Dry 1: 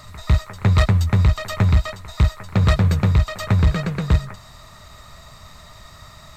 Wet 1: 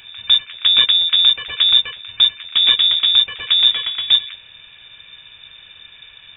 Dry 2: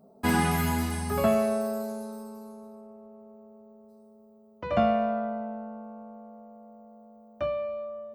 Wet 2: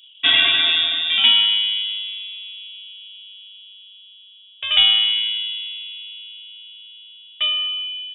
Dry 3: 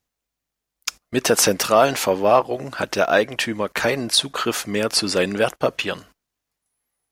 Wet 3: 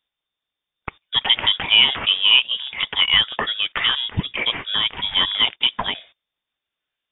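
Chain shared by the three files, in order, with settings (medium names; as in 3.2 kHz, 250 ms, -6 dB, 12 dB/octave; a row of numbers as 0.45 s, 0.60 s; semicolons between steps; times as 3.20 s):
frequency inversion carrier 3.6 kHz; peak normalisation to -1.5 dBFS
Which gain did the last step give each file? 0.0 dB, +8.5 dB, +0.5 dB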